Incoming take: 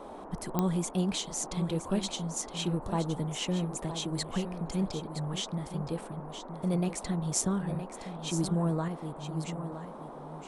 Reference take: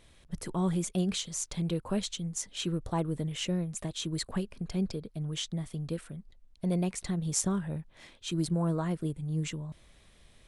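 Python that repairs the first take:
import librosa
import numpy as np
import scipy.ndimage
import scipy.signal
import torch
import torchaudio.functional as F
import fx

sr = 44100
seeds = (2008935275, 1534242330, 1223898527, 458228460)

y = fx.fix_declick_ar(x, sr, threshold=10.0)
y = fx.noise_reduce(y, sr, print_start_s=9.96, print_end_s=10.46, reduce_db=14.0)
y = fx.fix_echo_inverse(y, sr, delay_ms=967, level_db=-10.0)
y = fx.fix_level(y, sr, at_s=8.88, step_db=6.0)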